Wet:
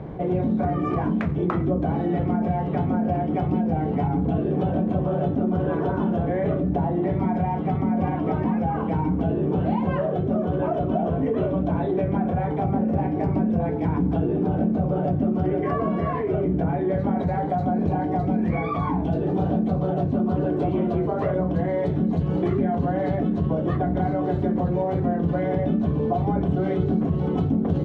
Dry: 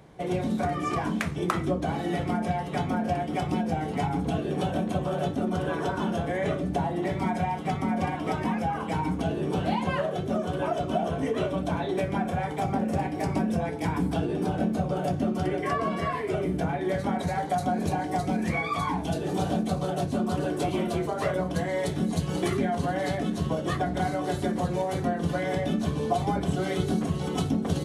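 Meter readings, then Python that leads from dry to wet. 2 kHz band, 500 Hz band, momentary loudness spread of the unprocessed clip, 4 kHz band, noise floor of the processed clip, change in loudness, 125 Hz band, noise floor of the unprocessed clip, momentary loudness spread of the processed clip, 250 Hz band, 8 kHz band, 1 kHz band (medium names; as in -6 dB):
-4.5 dB, +4.0 dB, 2 LU, under -10 dB, -26 dBFS, +4.5 dB, +6.0 dB, -33 dBFS, 1 LU, +5.5 dB, under -20 dB, +1.0 dB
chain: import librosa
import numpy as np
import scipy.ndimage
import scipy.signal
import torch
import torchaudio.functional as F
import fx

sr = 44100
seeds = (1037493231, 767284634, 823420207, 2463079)

y = scipy.signal.sosfilt(scipy.signal.butter(2, 3000.0, 'lowpass', fs=sr, output='sos'), x)
y = fx.tilt_shelf(y, sr, db=8.0, hz=1100.0)
y = fx.env_flatten(y, sr, amount_pct=50)
y = F.gain(torch.from_numpy(y), -4.5).numpy()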